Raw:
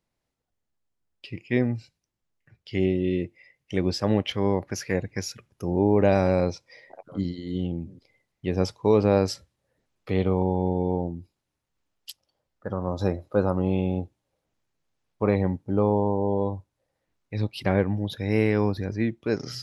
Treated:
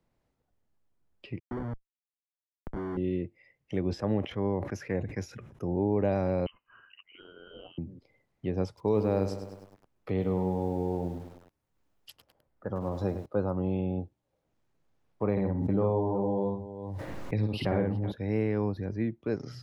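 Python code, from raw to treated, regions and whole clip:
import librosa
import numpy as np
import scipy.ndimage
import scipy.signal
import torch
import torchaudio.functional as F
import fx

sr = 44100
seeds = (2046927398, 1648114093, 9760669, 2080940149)

y = fx.chain(x, sr, fx.low_shelf(hz=190.0, db=-8.0),
    fx.schmitt(flips_db=-31.0),
    fx.savgol(points=41), at=(1.39, 2.97))
y = fx.chain(y, sr, fx.notch(hz=4500.0, q=9.1),
    fx.sustainer(db_per_s=78.0), at=(3.85, 5.75))
y = fx.chain(y, sr, fx.highpass(hz=560.0, slope=24),
    fx.freq_invert(carrier_hz=3500), at=(6.46, 7.78))
y = fx.chain(y, sr, fx.high_shelf(hz=9600.0, db=10.5),
    fx.echo_crushed(ms=102, feedback_pct=55, bits=7, wet_db=-10.0), at=(8.67, 13.26))
y = fx.chain(y, sr, fx.echo_multitap(ms=(56, 107, 373), db=(-3.0, -16.5, -14.0)),
    fx.pre_swell(db_per_s=28.0), at=(15.31, 18.12))
y = fx.high_shelf(y, sr, hz=2100.0, db=-11.5)
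y = fx.band_squash(y, sr, depth_pct=40)
y = F.gain(torch.from_numpy(y), -5.5).numpy()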